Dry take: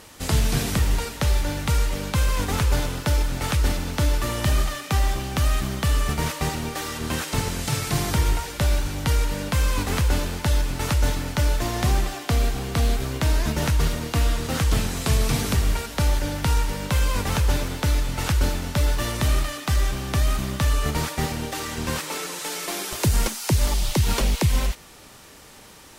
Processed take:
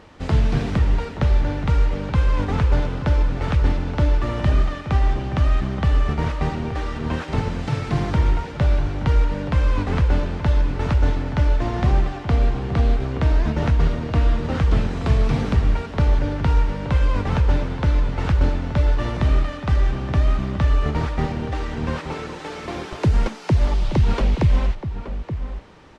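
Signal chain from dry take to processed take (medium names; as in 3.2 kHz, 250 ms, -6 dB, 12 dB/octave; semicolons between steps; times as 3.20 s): tape spacing loss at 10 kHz 30 dB; echo from a far wall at 150 m, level -10 dB; trim +3.5 dB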